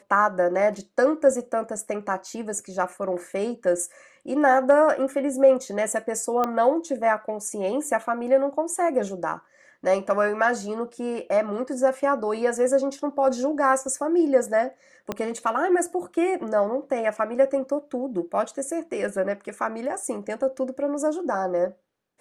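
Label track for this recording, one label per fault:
6.440000	6.440000	click −12 dBFS
15.120000	15.120000	click −13 dBFS

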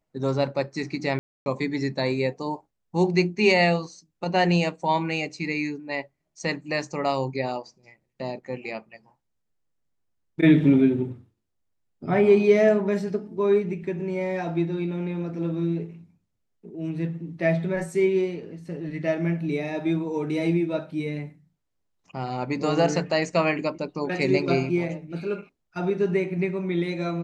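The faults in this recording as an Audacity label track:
1.190000	1.460000	drop-out 270 ms

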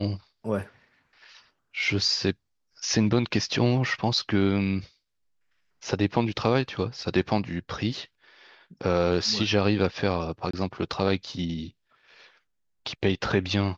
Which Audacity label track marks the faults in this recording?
10.510000	10.530000	drop-out 24 ms

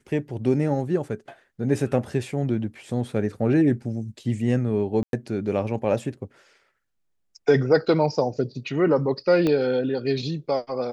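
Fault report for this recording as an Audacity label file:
5.030000	5.130000	drop-out 102 ms
9.470000	9.470000	click −12 dBFS

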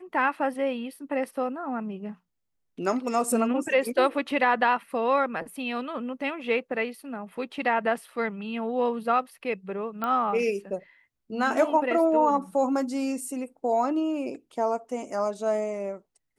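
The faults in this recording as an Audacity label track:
10.040000	10.040000	click −17 dBFS

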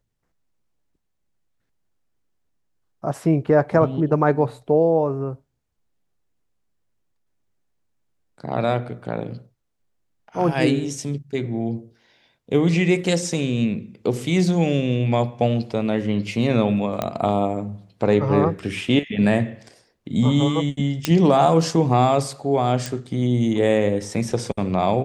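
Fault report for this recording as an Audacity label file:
17.020000	17.020000	click −10 dBFS
21.050000	21.050000	click −4 dBFS
22.860000	22.860000	click

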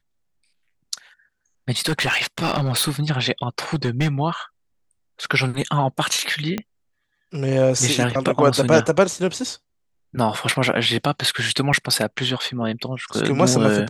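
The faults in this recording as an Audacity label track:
1.770000	2.910000	clipping −16 dBFS
3.730000	4.090000	clipping −15 dBFS
6.580000	6.580000	click −11 dBFS
11.730000	11.740000	drop-out 5.5 ms

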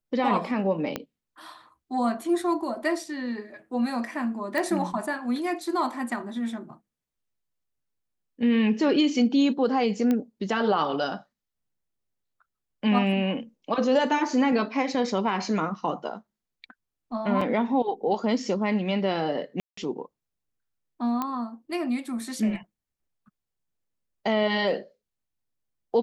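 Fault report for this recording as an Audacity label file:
0.960000	0.960000	click −14 dBFS
4.580000	4.580000	click
10.110000	10.110000	click −14 dBFS
17.410000	17.410000	drop-out 4.2 ms
19.600000	19.770000	drop-out 174 ms
21.220000	21.220000	click −15 dBFS

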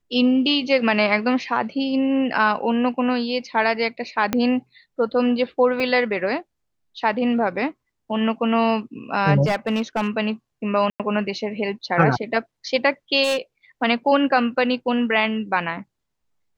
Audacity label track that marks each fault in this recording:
4.330000	4.330000	click −6 dBFS
5.800000	5.800000	drop-out 2.4 ms
9.450000	10.080000	clipping −16.5 dBFS
10.900000	11.000000	drop-out 97 ms
13.230000	13.380000	clipping −17 dBFS

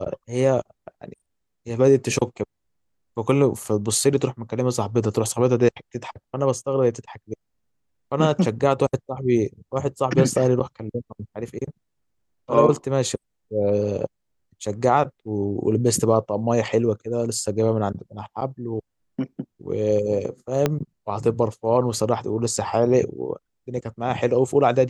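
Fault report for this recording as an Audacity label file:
20.660000	20.660000	click −6 dBFS

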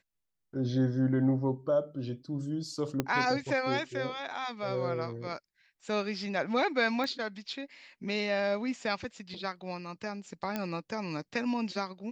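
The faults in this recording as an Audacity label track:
3.000000	3.000000	click −14 dBFS
7.040000	7.040000	click −22 dBFS
10.560000	10.560000	click −18 dBFS

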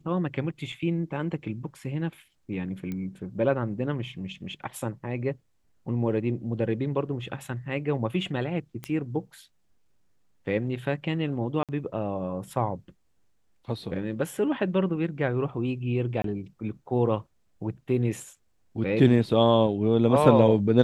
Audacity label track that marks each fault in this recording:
0.720000	0.720000	drop-out 4.3 ms
2.920000	2.920000	click −22 dBFS
8.840000	8.840000	click −19 dBFS
11.630000	11.690000	drop-out 57 ms
16.220000	16.240000	drop-out 23 ms

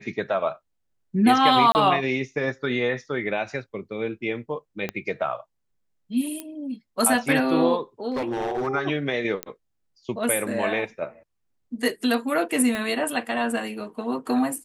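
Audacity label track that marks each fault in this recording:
1.720000	1.750000	drop-out 29 ms
4.890000	4.890000	click −14 dBFS
6.400000	6.400000	click −16 dBFS
8.120000	8.680000	clipping −23 dBFS
9.430000	9.430000	click −11 dBFS
12.750000	12.750000	click −15 dBFS

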